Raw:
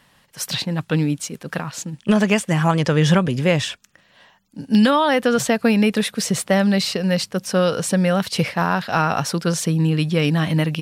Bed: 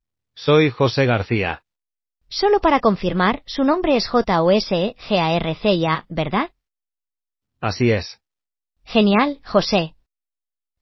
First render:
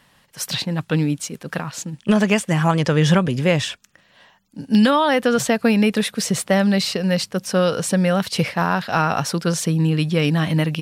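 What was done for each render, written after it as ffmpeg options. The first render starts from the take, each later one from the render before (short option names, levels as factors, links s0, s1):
-af anull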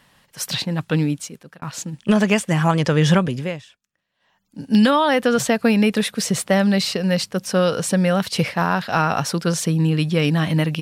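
-filter_complex "[0:a]asplit=4[s0][s1][s2][s3];[s0]atrim=end=1.62,asetpts=PTS-STARTPTS,afade=t=out:st=1.06:d=0.56[s4];[s1]atrim=start=1.62:end=3.62,asetpts=PTS-STARTPTS,afade=t=in:d=0.004:c=hsin,afade=t=out:st=1.58:d=0.42:silence=0.0841395[s5];[s2]atrim=start=3.62:end=4.2,asetpts=PTS-STARTPTS,volume=0.0841[s6];[s3]atrim=start=4.2,asetpts=PTS-STARTPTS,afade=t=in:d=0.42:silence=0.0841395[s7];[s4][s5][s6][s7]concat=n=4:v=0:a=1"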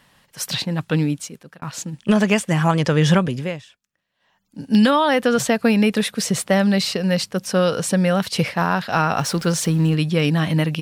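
-filter_complex "[0:a]asettb=1/sr,asplit=3[s0][s1][s2];[s0]atrim=end=9.194[s3];[s1]atrim=start=9.19:end=9.95,asetpts=PTS-STARTPTS,afade=t=in:d=0.004:c=qsin,afade=t=out:st=0.756:d=0.004:c=qsin,aeval=exprs='val(0)+0.5*0.0224*sgn(val(0))':c=same[s4];[s2]atrim=start=9.946[s5];[s3][s4]acrossfade=d=0.004:c1=hsin:c2=qsin[s6];[s6][s5]acrossfade=d=0.004:c1=qsin:c2=hsin"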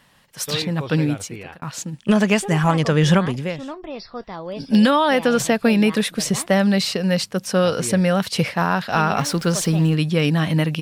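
-filter_complex "[1:a]volume=0.168[s0];[0:a][s0]amix=inputs=2:normalize=0"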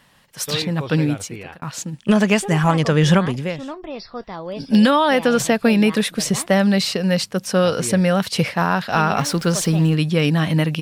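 -af "volume=1.12"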